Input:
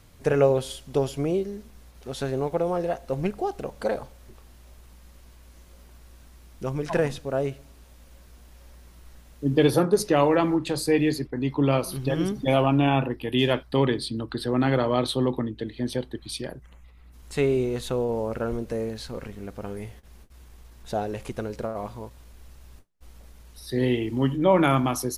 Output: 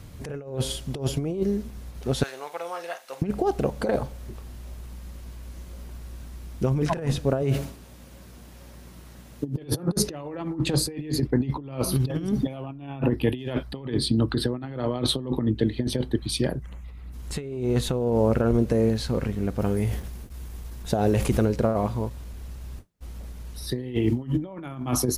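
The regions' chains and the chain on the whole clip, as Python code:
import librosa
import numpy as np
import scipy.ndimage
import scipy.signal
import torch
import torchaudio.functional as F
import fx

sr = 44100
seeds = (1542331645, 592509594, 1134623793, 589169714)

y = fx.chain(x, sr, fx.highpass(hz=1400.0, slope=12),
    fx.doubler(ms=47.0, db=-12.5), at=(2.23, 3.22))
y = fx.chain(y, sr, fx.highpass(hz=100.0, slope=12),
    fx.sustainer(db_per_s=100.0), at=(7.42, 9.66))
y = fx.chain(y, sr, fx.high_shelf(hz=7700.0, db=6.0),
    fx.sustainer(db_per_s=44.0), at=(19.59, 21.45))
y = fx.highpass(y, sr, hz=73.0, slope=6)
y = fx.low_shelf(y, sr, hz=270.0, db=11.0)
y = fx.over_compress(y, sr, threshold_db=-24.0, ratio=-0.5)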